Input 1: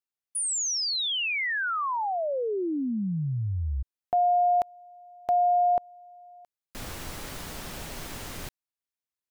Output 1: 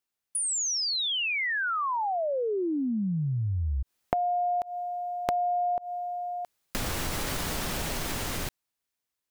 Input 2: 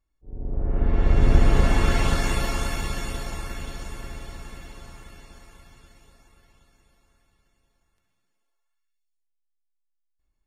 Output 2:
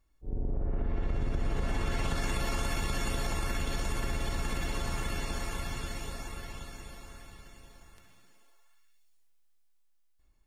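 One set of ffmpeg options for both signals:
ffmpeg -i in.wav -filter_complex "[0:a]dynaudnorm=framelen=730:gausssize=7:maxgain=11dB,asplit=2[link_01][link_02];[link_02]alimiter=level_in=1dB:limit=-24dB:level=0:latency=1,volume=-1dB,volume=0dB[link_03];[link_01][link_03]amix=inputs=2:normalize=0,acompressor=threshold=-28dB:ratio=6:attack=10:release=174:knee=6:detection=peak" out.wav

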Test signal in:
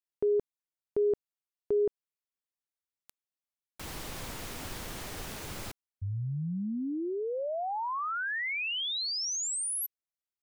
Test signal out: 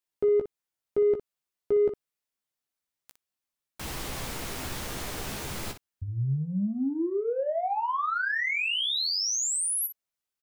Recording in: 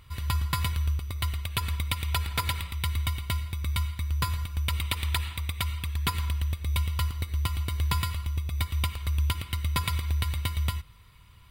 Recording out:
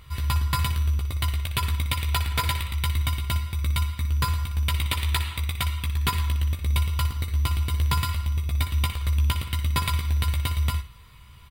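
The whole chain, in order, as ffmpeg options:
ffmpeg -i in.wav -filter_complex "[0:a]asplit=2[link_01][link_02];[link_02]asoftclip=type=tanh:threshold=-30dB,volume=-4.5dB[link_03];[link_01][link_03]amix=inputs=2:normalize=0,aecho=1:1:15|60:0.501|0.299" out.wav

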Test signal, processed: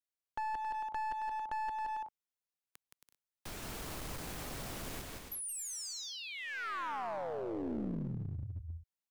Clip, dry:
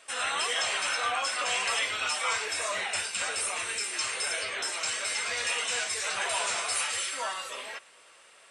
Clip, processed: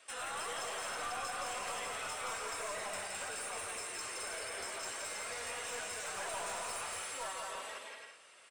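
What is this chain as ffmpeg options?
ffmpeg -i in.wav -filter_complex "[0:a]aecho=1:1:170|272|333.2|369.9|392:0.631|0.398|0.251|0.158|0.1,acrossover=split=230|1400|7400[link_01][link_02][link_03][link_04];[link_01]acompressor=threshold=-32dB:ratio=4[link_05];[link_02]acompressor=threshold=-30dB:ratio=4[link_06];[link_03]acompressor=threshold=-42dB:ratio=4[link_07];[link_04]acompressor=threshold=-38dB:ratio=4[link_08];[link_05][link_06][link_07][link_08]amix=inputs=4:normalize=0,aeval=exprs='clip(val(0),-1,0.0237)':channel_layout=same,volume=-6dB" out.wav

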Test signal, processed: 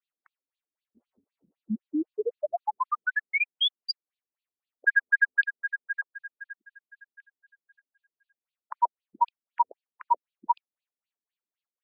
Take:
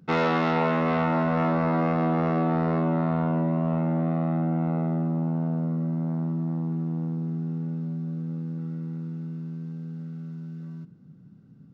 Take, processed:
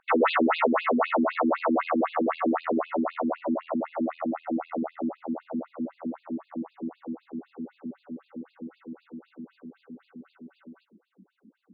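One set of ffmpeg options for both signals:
ffmpeg -i in.wav -af "asubboost=boost=9:cutoff=89,afftfilt=real='re*between(b*sr/1024,250*pow(3500/250,0.5+0.5*sin(2*PI*3.9*pts/sr))/1.41,250*pow(3500/250,0.5+0.5*sin(2*PI*3.9*pts/sr))*1.41)':imag='im*between(b*sr/1024,250*pow(3500/250,0.5+0.5*sin(2*PI*3.9*pts/sr))/1.41,250*pow(3500/250,0.5+0.5*sin(2*PI*3.9*pts/sr))*1.41)':win_size=1024:overlap=0.75,volume=9dB" out.wav

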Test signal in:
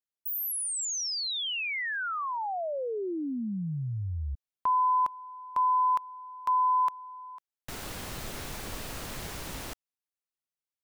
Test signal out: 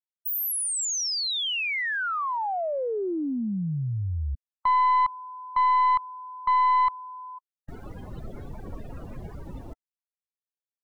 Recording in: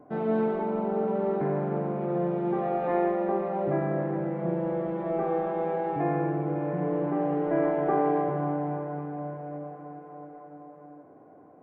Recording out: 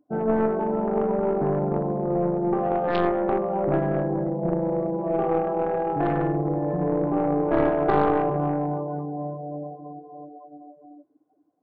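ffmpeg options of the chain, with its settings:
ffmpeg -i in.wav -af "afftdn=noise_reduction=29:noise_floor=-36,aeval=exprs='0.224*(cos(1*acos(clip(val(0)/0.224,-1,1)))-cos(1*PI/2))+0.0891*(cos(4*acos(clip(val(0)/0.224,-1,1)))-cos(4*PI/2))+0.00794*(cos(5*acos(clip(val(0)/0.224,-1,1)))-cos(5*PI/2))+0.0398*(cos(6*acos(clip(val(0)/0.224,-1,1)))-cos(6*PI/2))':channel_layout=same,volume=3dB" out.wav

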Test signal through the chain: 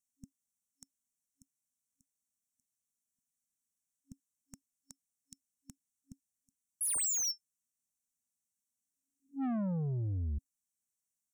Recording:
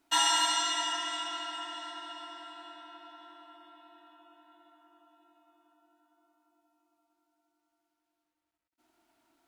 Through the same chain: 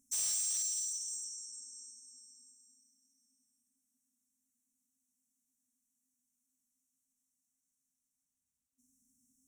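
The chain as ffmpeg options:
ffmpeg -i in.wav -af "equalizer=frequency=250:width_type=o:width=1:gain=6,equalizer=frequency=500:width_type=o:width=1:gain=4,equalizer=frequency=1000:width_type=o:width=1:gain=-5,equalizer=frequency=2000:width_type=o:width=1:gain=12,equalizer=frequency=8000:width_type=o:width=1:gain=10,afftfilt=real='re*(1-between(b*sr/4096,270,5400))':imag='im*(1-between(b*sr/4096,270,5400))':win_size=4096:overlap=0.75,asoftclip=type=tanh:threshold=-32dB" out.wav

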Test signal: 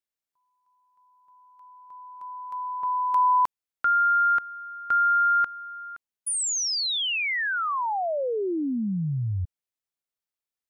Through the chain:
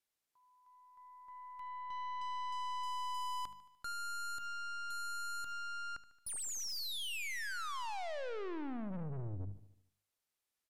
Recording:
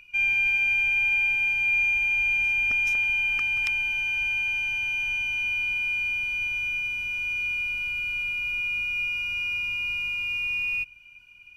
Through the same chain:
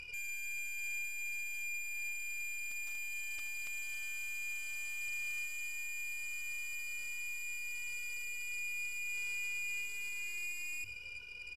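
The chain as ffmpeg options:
ffmpeg -i in.wav -af "bandreject=frequency=50:width_type=h:width=6,bandreject=frequency=100:width_type=h:width=6,bandreject=frequency=150:width_type=h:width=6,bandreject=frequency=200:width_type=h:width=6,acompressor=threshold=-43dB:ratio=2:release=103:detection=peak,aeval=exprs='(tanh(224*val(0)+0.55)-tanh(0.55))/224':channel_layout=same,aecho=1:1:74|148|222|296|370|444:0.178|0.101|0.0578|0.0329|0.0188|0.0107,aresample=32000,aresample=44100,volume=6dB" out.wav

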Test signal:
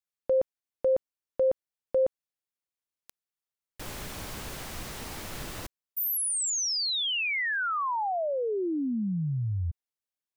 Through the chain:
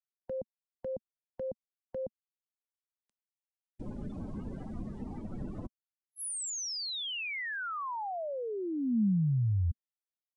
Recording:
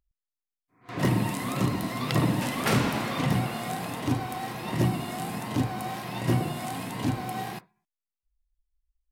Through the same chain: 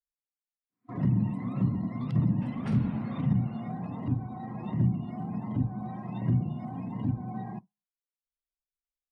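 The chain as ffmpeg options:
ffmpeg -i in.wav -filter_complex "[0:a]adynamicequalizer=threshold=0.00708:dfrequency=810:dqfactor=0.94:tfrequency=810:tqfactor=0.94:attack=5:release=100:ratio=0.375:range=2:mode=boostabove:tftype=bell,aresample=22050,aresample=44100,equalizer=frequency=220:width_type=o:width=0.83:gain=10,afftdn=noise_reduction=29:noise_floor=-35,acrossover=split=170[link_01][link_02];[link_02]acompressor=threshold=-35dB:ratio=8:attack=0.11:release=833:knee=2.83:detection=peak[link_03];[link_01][link_03]amix=inputs=2:normalize=0" out.wav

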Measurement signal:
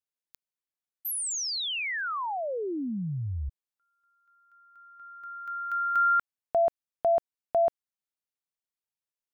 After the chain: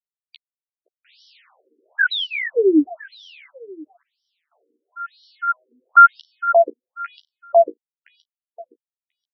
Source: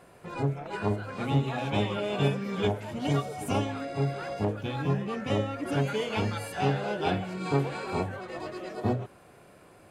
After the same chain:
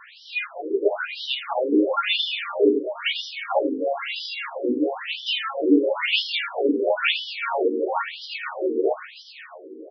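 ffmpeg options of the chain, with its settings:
ffmpeg -i in.wav -filter_complex "[0:a]equalizer=frequency=800:width_type=o:width=1.5:gain=-10,acrusher=bits=9:mix=0:aa=0.000001,asplit=2[link_01][link_02];[link_02]adelay=13,volume=-3dB[link_03];[link_01][link_03]amix=inputs=2:normalize=0,asplit=2[link_04][link_05];[link_05]aecho=0:1:519|1038|1557:0.266|0.0745|0.0209[link_06];[link_04][link_06]amix=inputs=2:normalize=0,alimiter=level_in=20dB:limit=-1dB:release=50:level=0:latency=1,afftfilt=real='re*between(b*sr/1024,340*pow(4200/340,0.5+0.5*sin(2*PI*1*pts/sr))/1.41,340*pow(4200/340,0.5+0.5*sin(2*PI*1*pts/sr))*1.41)':imag='im*between(b*sr/1024,340*pow(4200/340,0.5+0.5*sin(2*PI*1*pts/sr))/1.41,340*pow(4200/340,0.5+0.5*sin(2*PI*1*pts/sr))*1.41)':win_size=1024:overlap=0.75,volume=-1dB" out.wav

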